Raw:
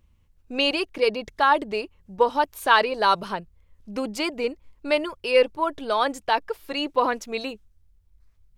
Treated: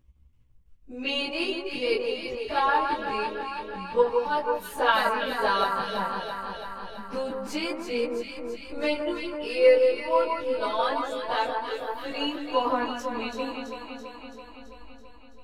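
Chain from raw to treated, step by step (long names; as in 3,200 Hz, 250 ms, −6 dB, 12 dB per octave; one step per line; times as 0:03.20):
time stretch by phase vocoder 1.8×
transient designer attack 0 dB, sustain −7 dB
low-shelf EQ 240 Hz +7 dB
chorus effect 0.26 Hz, delay 16 ms, depth 5.2 ms
delay that swaps between a low-pass and a high-pass 166 ms, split 1,600 Hz, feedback 81%, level −4 dB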